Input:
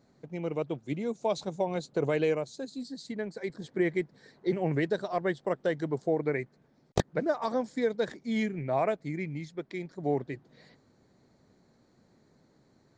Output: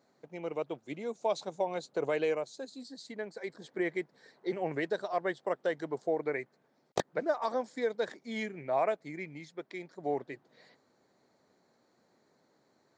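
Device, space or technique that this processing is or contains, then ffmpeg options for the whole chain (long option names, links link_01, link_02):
filter by subtraction: -filter_complex "[0:a]asplit=2[link_01][link_02];[link_02]lowpass=710,volume=-1[link_03];[link_01][link_03]amix=inputs=2:normalize=0,volume=-2.5dB"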